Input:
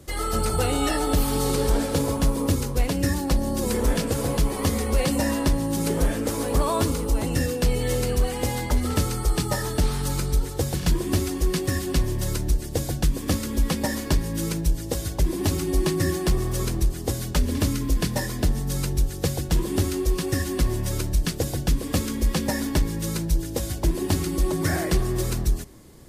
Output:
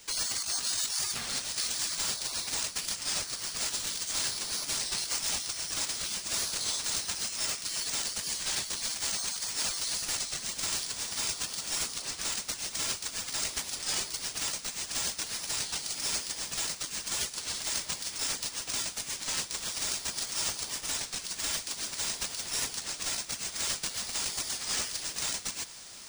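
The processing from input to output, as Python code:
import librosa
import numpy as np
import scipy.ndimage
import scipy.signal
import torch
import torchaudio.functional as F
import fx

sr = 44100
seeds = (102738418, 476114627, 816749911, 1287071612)

y = scipy.signal.sosfilt(scipy.signal.cheby2(4, 60, 1300.0, 'highpass', fs=sr, output='sos'), x)
y = fx.high_shelf(y, sr, hz=11000.0, db=-4.0)
y = fx.over_compress(y, sr, threshold_db=-38.0, ratio=-0.5)
y = fx.echo_diffused(y, sr, ms=1684, feedback_pct=64, wet_db=-16)
y = np.repeat(y[::3], 3)[:len(y)]
y = fx.record_warp(y, sr, rpm=33.33, depth_cents=100.0)
y = y * 10.0 ** (6.5 / 20.0)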